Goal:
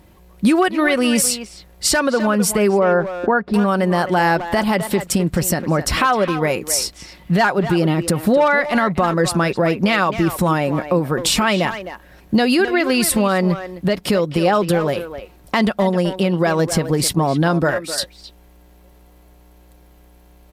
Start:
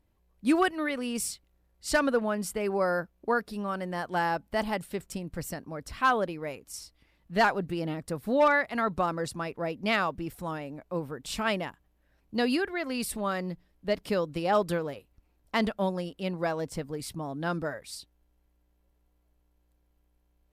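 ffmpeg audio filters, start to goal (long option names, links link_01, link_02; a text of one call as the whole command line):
ffmpeg -i in.wav -filter_complex "[0:a]asettb=1/sr,asplit=3[link_01][link_02][link_03];[link_01]atrim=end=2.794[link_04];[link_02]atrim=start=2.79:end=3.54,asetpts=PTS-STARTPTS,afade=type=in:duration=0.004:curve=qsin,afade=type=out:start_time=0.746:duration=0.004:curve=qsin,lowpass=1700[link_05];[link_03]atrim=start=3.536[link_06];[link_04][link_05]acrossfade=duration=0.004:curve1=hsin:curve2=qsin[link_07];[link_07][link_06]acrossfade=duration=0.004:curve1=qsin:curve2=hsin,asettb=1/sr,asplit=3[link_08][link_09][link_10];[link_08]atrim=end=17.134[link_11];[link_09]atrim=start=17.13:end=17.98,asetpts=PTS-STARTPTS,afade=type=in:duration=0.004:curve=qsin,afade=type=out:start_time=0.846:duration=0.004:curve=qsin,agate=range=-10dB:threshold=-37dB:ratio=16:detection=peak[link_12];[link_10]atrim=start=17.976[link_13];[link_11][link_12]acrossfade=duration=0.004:curve1=hsin:curve2=qsin[link_14];[link_14][link_13]acrossfade=duration=0.004:curve1=qsin:curve2=hsin,highpass=54,aecho=1:1:5.5:0.32,acompressor=threshold=-38dB:ratio=5,asplit=2[link_15][link_16];[link_16]adelay=260,highpass=300,lowpass=3400,asoftclip=type=hard:threshold=-36.5dB,volume=-10dB[link_17];[link_15][link_17]amix=inputs=2:normalize=0,alimiter=level_in=30dB:limit=-1dB:release=50:level=0:latency=1,volume=-5.5dB" out.wav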